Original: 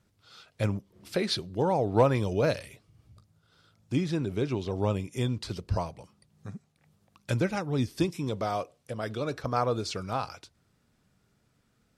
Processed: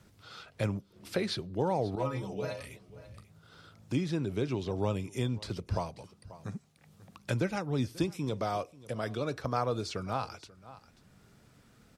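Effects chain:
0:01.95–0:02.60: stiff-string resonator 63 Hz, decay 0.4 s, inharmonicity 0.008
single-tap delay 537 ms −23 dB
multiband upward and downward compressor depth 40%
level −2.5 dB

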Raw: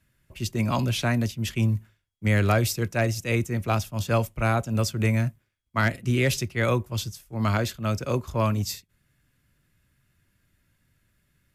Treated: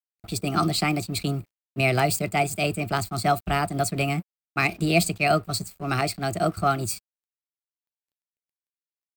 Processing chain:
EQ curve with evenly spaced ripples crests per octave 1.1, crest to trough 13 dB
in parallel at 0 dB: downward compressor 6 to 1, threshold −39 dBFS, peak gain reduction 22 dB
on the sum: speed change +26%
dead-zone distortion −48.5 dBFS

